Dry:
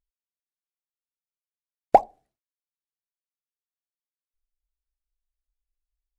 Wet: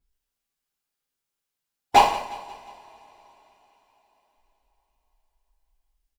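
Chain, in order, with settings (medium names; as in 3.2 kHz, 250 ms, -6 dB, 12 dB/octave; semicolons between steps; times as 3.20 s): rattle on loud lows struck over -35 dBFS, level -13 dBFS; formant shift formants +3 st; overload inside the chain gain 20.5 dB; on a send: feedback delay 178 ms, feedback 50%, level -17 dB; on the sum: two-slope reverb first 0.56 s, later 4.5 s, from -28 dB, DRR -9.5 dB; trim +1 dB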